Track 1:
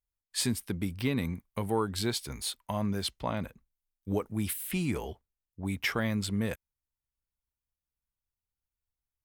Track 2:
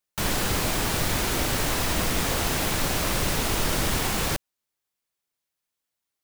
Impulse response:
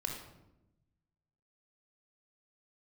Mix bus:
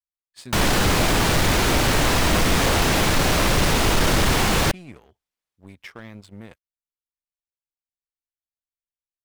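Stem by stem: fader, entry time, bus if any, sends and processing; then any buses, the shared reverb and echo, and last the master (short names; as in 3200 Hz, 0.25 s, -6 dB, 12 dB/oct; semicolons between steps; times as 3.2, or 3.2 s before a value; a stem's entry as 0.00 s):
-15.5 dB, 0.00 s, no send, dry
+1.5 dB, 0.35 s, no send, dry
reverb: off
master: sample leveller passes 2; high shelf 8500 Hz -10.5 dB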